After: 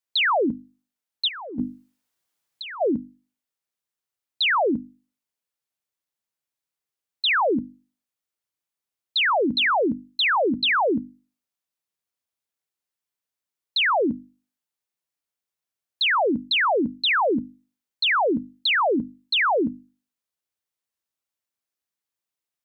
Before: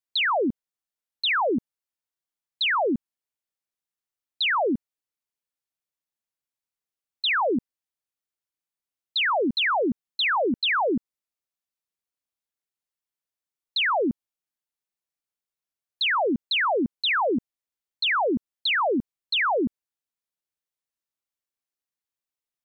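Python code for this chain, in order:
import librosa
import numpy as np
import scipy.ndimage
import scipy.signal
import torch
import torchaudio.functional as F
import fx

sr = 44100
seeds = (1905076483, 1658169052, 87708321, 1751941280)

y = scipy.signal.sosfilt(scipy.signal.butter(4, 45.0, 'highpass', fs=sr, output='sos'), x)
y = fx.hum_notches(y, sr, base_hz=50, count=6)
y = fx.over_compress(y, sr, threshold_db=-31.0, ratio=-0.5, at=(1.27, 2.8), fade=0.02)
y = F.gain(torch.from_numpy(y), 2.5).numpy()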